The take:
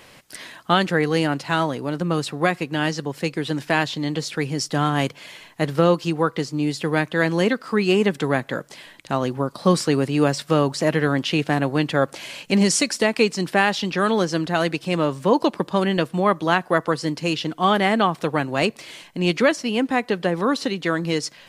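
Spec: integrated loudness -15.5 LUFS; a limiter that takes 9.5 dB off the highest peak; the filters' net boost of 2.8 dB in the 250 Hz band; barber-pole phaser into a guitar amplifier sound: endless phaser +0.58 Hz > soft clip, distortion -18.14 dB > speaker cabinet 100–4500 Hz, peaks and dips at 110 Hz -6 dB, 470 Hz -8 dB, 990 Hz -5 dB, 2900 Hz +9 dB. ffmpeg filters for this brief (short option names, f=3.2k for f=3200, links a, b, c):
-filter_complex "[0:a]equalizer=f=250:t=o:g=5,alimiter=limit=-11.5dB:level=0:latency=1,asplit=2[a][b];[b]afreqshift=0.58[c];[a][c]amix=inputs=2:normalize=1,asoftclip=threshold=-17.5dB,highpass=100,equalizer=f=110:t=q:w=4:g=-6,equalizer=f=470:t=q:w=4:g=-8,equalizer=f=990:t=q:w=4:g=-5,equalizer=f=2.9k:t=q:w=4:g=9,lowpass=f=4.5k:w=0.5412,lowpass=f=4.5k:w=1.3066,volume=13dB"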